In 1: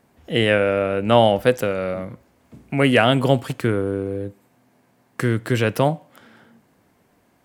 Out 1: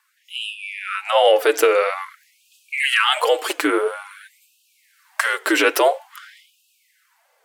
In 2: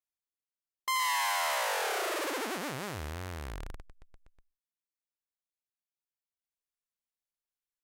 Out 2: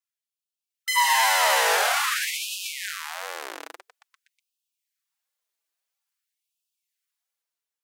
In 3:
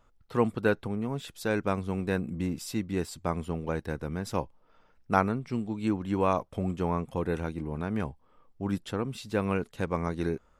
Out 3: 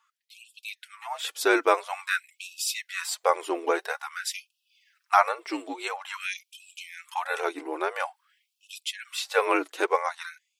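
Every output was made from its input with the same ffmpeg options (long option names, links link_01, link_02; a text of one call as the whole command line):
ffmpeg -i in.wav -af "flanger=delay=3.3:depth=2.5:regen=15:speed=1.5:shape=sinusoidal,alimiter=limit=-16dB:level=0:latency=1:release=77,afreqshift=-58,lowshelf=frequency=360:gain=-9,dynaudnorm=framelen=250:gausssize=7:maxgain=9dB,afftfilt=real='re*gte(b*sr/1024,270*pow(2500/270,0.5+0.5*sin(2*PI*0.49*pts/sr)))':imag='im*gte(b*sr/1024,270*pow(2500/270,0.5+0.5*sin(2*PI*0.49*pts/sr)))':win_size=1024:overlap=0.75,volume=6dB" out.wav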